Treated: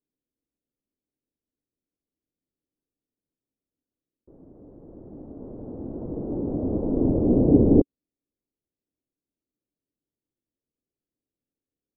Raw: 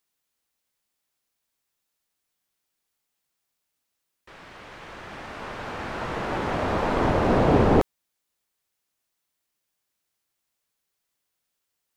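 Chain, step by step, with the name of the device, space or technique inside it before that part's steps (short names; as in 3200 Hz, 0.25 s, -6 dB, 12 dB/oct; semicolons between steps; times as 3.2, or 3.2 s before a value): under water (LPF 490 Hz 24 dB/oct; bell 280 Hz +8 dB 0.51 oct)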